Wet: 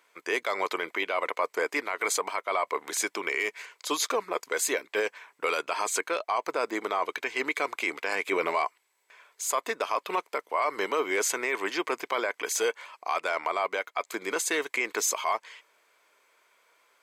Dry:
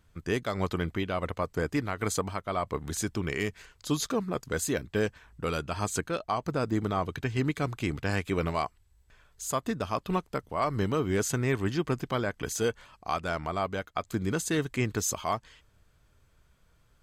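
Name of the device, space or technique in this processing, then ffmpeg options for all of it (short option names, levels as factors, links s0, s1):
laptop speaker: -filter_complex "[0:a]asettb=1/sr,asplit=3[s0][s1][s2];[s0]atrim=end=8.154[s3];[s1]atrim=start=8.15:end=8.65,asetpts=PTS-STARTPTS,afade=t=in:d=0.004:c=qsin,afade=t=out:st=0.496:d=0.004:c=qsin,lowshelf=f=380:g=8.5[s4];[s2]atrim=start=8.646[s5];[s3][s4]acrossfade=d=0.004:c1=hsin:c2=qsin[s6];[s6][s5]acrossfade=d=0.004:c1=qsin:c2=hsin,highpass=f=410:w=0.5412,highpass=f=410:w=1.3066,equalizer=f=1000:t=o:w=0.24:g=7,equalizer=f=2200:t=o:w=0.32:g=10,alimiter=limit=0.0794:level=0:latency=1:release=11,volume=1.78"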